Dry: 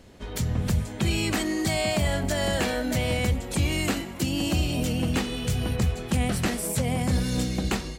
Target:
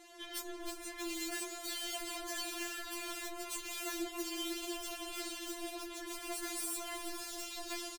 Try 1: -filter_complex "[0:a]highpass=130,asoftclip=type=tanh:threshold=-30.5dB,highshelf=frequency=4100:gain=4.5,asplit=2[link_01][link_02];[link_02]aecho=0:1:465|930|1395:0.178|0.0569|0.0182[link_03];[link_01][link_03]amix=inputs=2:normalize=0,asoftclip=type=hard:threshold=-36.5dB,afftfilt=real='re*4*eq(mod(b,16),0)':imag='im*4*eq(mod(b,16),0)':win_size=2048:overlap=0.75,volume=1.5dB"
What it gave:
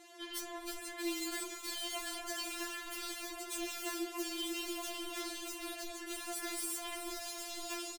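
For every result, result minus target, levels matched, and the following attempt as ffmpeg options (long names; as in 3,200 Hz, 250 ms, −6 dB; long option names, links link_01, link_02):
soft clipping: distortion +8 dB; 125 Hz band −3.0 dB
-filter_complex "[0:a]highpass=130,asoftclip=type=tanh:threshold=-20.5dB,highshelf=frequency=4100:gain=4.5,asplit=2[link_01][link_02];[link_02]aecho=0:1:465|930|1395:0.178|0.0569|0.0182[link_03];[link_01][link_03]amix=inputs=2:normalize=0,asoftclip=type=hard:threshold=-36.5dB,afftfilt=real='re*4*eq(mod(b,16),0)':imag='im*4*eq(mod(b,16),0)':win_size=2048:overlap=0.75,volume=1.5dB"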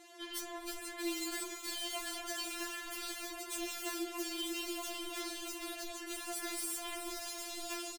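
125 Hz band −3.0 dB
-filter_complex "[0:a]highpass=44,asoftclip=type=tanh:threshold=-20.5dB,highshelf=frequency=4100:gain=4.5,asplit=2[link_01][link_02];[link_02]aecho=0:1:465|930|1395:0.178|0.0569|0.0182[link_03];[link_01][link_03]amix=inputs=2:normalize=0,asoftclip=type=hard:threshold=-36.5dB,afftfilt=real='re*4*eq(mod(b,16),0)':imag='im*4*eq(mod(b,16),0)':win_size=2048:overlap=0.75,volume=1.5dB"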